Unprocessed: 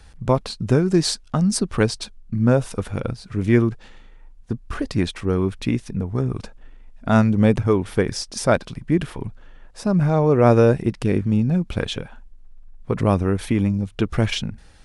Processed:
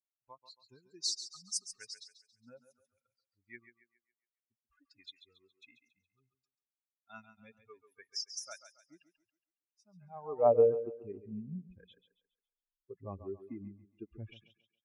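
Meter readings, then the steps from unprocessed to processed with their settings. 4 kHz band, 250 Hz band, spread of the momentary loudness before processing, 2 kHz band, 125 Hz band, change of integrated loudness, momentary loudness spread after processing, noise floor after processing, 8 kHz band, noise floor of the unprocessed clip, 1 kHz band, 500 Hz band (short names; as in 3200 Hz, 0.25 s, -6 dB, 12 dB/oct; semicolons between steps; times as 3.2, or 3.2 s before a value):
-13.0 dB, -29.5 dB, 12 LU, -27.0 dB, -31.5 dB, -13.5 dB, 26 LU, under -85 dBFS, -11.0 dB, -46 dBFS, -16.0 dB, -13.0 dB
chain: per-bin expansion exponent 3; thinning echo 0.138 s, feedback 38%, high-pass 220 Hz, level -11 dB; band-pass sweep 5800 Hz -> 390 Hz, 9.86–10.59; gain -2 dB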